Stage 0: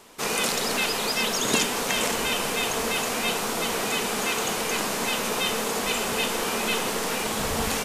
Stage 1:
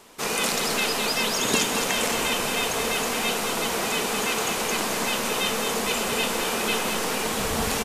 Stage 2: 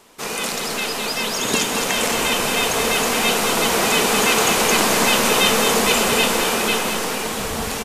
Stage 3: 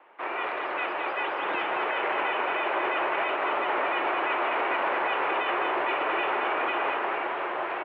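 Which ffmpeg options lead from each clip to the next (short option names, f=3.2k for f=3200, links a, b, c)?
-af "aecho=1:1:215:0.473"
-af "dynaudnorm=f=400:g=9:m=11.5dB"
-filter_complex "[0:a]acrossover=split=580 2200:gain=0.141 1 0.126[a][b][c];[a][b][c]amix=inputs=3:normalize=0,alimiter=limit=-19dB:level=0:latency=1:release=33,highpass=f=390:t=q:w=0.5412,highpass=f=390:t=q:w=1.307,lowpass=f=3.1k:t=q:w=0.5176,lowpass=f=3.1k:t=q:w=0.7071,lowpass=f=3.1k:t=q:w=1.932,afreqshift=-93,volume=1dB"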